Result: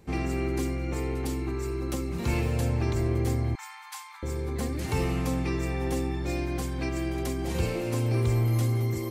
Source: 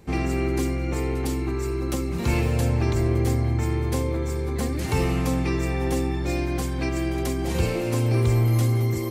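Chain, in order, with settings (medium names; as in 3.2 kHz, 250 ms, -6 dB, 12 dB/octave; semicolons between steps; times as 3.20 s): 3.55–4.23 s: Chebyshev high-pass 810 Hz, order 8; trim -4.5 dB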